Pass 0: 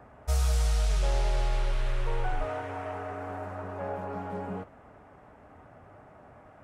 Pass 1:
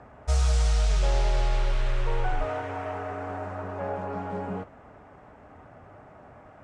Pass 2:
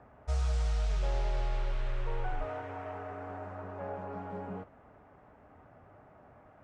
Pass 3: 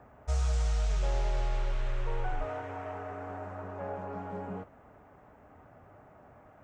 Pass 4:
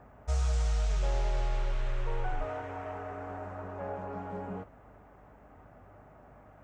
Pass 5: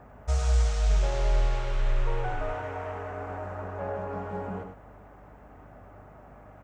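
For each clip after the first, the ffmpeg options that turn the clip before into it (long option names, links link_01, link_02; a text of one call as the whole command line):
ffmpeg -i in.wav -af "lowpass=frequency=8400:width=0.5412,lowpass=frequency=8400:width=1.3066,volume=3dB" out.wav
ffmpeg -i in.wav -af "highshelf=frequency=4800:gain=-9.5,volume=-7.5dB" out.wav
ffmpeg -i in.wav -af "aexciter=amount=2:drive=1.8:freq=6100,volume=1.5dB" out.wav
ffmpeg -i in.wav -af "aeval=exprs='val(0)+0.001*(sin(2*PI*50*n/s)+sin(2*PI*2*50*n/s)/2+sin(2*PI*3*50*n/s)/3+sin(2*PI*4*50*n/s)/4+sin(2*PI*5*50*n/s)/5)':channel_layout=same" out.wav
ffmpeg -i in.wav -af "aecho=1:1:99:0.447,volume=4dB" out.wav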